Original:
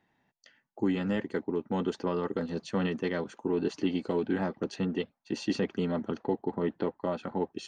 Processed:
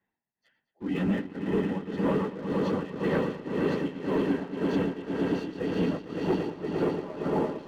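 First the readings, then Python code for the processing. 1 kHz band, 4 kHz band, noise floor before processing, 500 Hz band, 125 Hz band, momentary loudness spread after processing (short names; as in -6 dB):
+2.5 dB, -1.5 dB, -77 dBFS, +2.5 dB, +3.5 dB, 4 LU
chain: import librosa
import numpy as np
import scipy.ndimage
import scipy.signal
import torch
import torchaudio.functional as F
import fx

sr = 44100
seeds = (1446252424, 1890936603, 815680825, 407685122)

y = fx.phase_scramble(x, sr, seeds[0], window_ms=50)
y = scipy.signal.sosfilt(scipy.signal.butter(2, 3100.0, 'lowpass', fs=sr, output='sos'), y)
y = fx.echo_swell(y, sr, ms=114, loudest=5, wet_db=-8.0)
y = y * (1.0 - 0.83 / 2.0 + 0.83 / 2.0 * np.cos(2.0 * np.pi * 1.9 * (np.arange(len(y)) / sr)))
y = fx.leveller(y, sr, passes=2)
y = y * librosa.db_to_amplitude(-4.0)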